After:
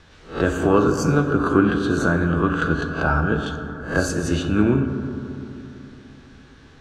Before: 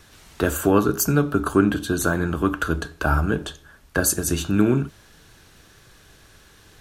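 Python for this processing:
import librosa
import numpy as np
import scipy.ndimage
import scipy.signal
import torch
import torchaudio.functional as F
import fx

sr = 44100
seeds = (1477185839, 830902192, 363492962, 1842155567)

y = fx.spec_swells(x, sr, rise_s=0.34)
y = fx.air_absorb(y, sr, metres=130.0)
y = fx.rev_fdn(y, sr, rt60_s=3.1, lf_ratio=1.2, hf_ratio=0.3, size_ms=36.0, drr_db=5.5)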